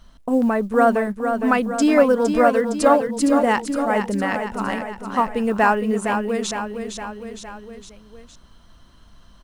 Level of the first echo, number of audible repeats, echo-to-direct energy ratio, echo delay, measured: −7.0 dB, 4, −5.5 dB, 461 ms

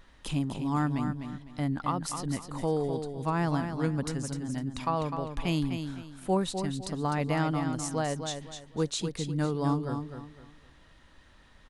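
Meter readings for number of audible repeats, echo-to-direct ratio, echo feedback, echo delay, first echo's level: 3, −7.0 dB, 29%, 253 ms, −7.5 dB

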